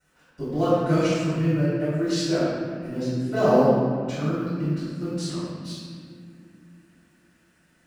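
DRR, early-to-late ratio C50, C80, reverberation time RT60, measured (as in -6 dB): -14.5 dB, -4.0 dB, -1.5 dB, 2.3 s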